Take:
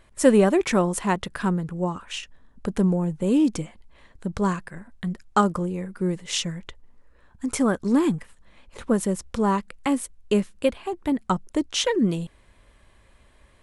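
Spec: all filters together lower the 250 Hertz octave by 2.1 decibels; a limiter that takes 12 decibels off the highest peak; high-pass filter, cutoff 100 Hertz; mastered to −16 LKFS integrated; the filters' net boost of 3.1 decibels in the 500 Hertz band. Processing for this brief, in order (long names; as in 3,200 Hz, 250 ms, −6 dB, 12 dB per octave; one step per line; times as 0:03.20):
high-pass filter 100 Hz
parametric band 250 Hz −4 dB
parametric band 500 Hz +5 dB
level +10.5 dB
brickwall limiter −3.5 dBFS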